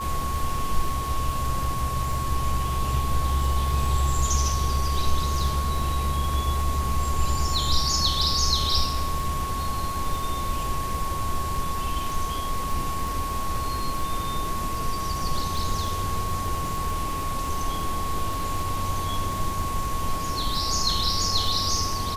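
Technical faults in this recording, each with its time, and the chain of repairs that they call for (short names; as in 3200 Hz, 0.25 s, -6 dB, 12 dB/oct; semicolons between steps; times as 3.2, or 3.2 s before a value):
crackle 33/s -30 dBFS
tone 1100 Hz -29 dBFS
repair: de-click; notch 1100 Hz, Q 30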